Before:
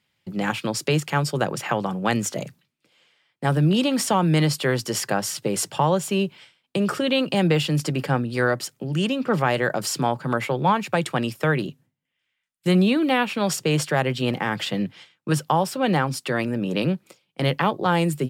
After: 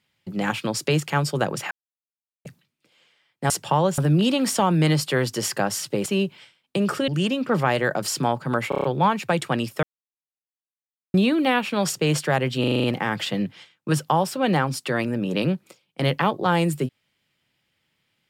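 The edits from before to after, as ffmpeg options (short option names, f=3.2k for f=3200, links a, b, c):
-filter_complex "[0:a]asplit=20[a][b][c][d][e][f][g][h][i][j][k][l][m][n][o][p][q][r][s][t];[a]atrim=end=1.71,asetpts=PTS-STARTPTS,afade=t=out:st=1.706:d=0.004:c=hsin[u];[b]atrim=start=1.71:end=2.45,asetpts=PTS-STARTPTS,volume=0[v];[c]atrim=start=2.45:end=3.502,asetpts=PTS-STARTPTS,afade=t=in:d=0.004:c=hsin[w];[d]atrim=start=5.578:end=6.062[x];[e]atrim=start=3.498:end=5.582[y];[f]atrim=start=6.058:end=7.082[z];[g]atrim=start=8.868:end=10.512[aa];[h]atrim=start=10.478:end=10.512[ab];[i]atrim=start=10.478:end=10.512[ac];[j]atrim=start=10.478:end=10.512[ad];[k]atrim=start=10.478:end=10.512[ae];[l]atrim=start=10.478:end=11.47,asetpts=PTS-STARTPTS,afade=t=out:st=0.988:d=0.004:c=hsin[af];[m]atrim=start=11.47:end=12.78,asetpts=PTS-STARTPTS,volume=0[ag];[n]atrim=start=12.78:end=14.282,asetpts=PTS-STARTPTS,afade=t=in:d=0.004:c=hsin[ah];[o]atrim=start=14.238:end=14.282[ai];[p]atrim=start=14.238:end=14.282[aj];[q]atrim=start=14.238:end=14.282[ak];[r]atrim=start=14.238:end=14.282[al];[s]atrim=start=14.238:end=14.282[am];[t]atrim=start=14.238[an];[u][v][w]concat=n=3:v=0:a=1[ao];[ao][x]acrossfade=d=0.004:c1=hsin:c2=hsin[ap];[ap][y]acrossfade=d=0.004:c1=hsin:c2=hsin[aq];[aq][z]acrossfade=d=0.004:c1=hsin:c2=hsin[ar];[ar][aa]acrossfade=d=0.004:c1=hsin:c2=hsin[as];[as][ab]acrossfade=d=0.004:c1=hsin:c2=hsin[at];[at][ac]acrossfade=d=0.004:c1=hsin:c2=hsin[au];[au][ad]acrossfade=d=0.004:c1=hsin:c2=hsin[av];[av][ae]acrossfade=d=0.004:c1=hsin:c2=hsin[aw];[af][ag][ah]concat=n=3:v=0:a=1[ax];[aw][ax]acrossfade=d=0.004:c1=hsin:c2=hsin[ay];[ay][ai]acrossfade=d=0.004:c1=hsin:c2=hsin[az];[az][aj]acrossfade=d=0.004:c1=hsin:c2=hsin[ba];[ba][ak]acrossfade=d=0.004:c1=hsin:c2=hsin[bb];[bb][al]acrossfade=d=0.004:c1=hsin:c2=hsin[bc];[bc][am]acrossfade=d=0.004:c1=hsin:c2=hsin[bd];[bd][an]acrossfade=d=0.004:c1=hsin:c2=hsin"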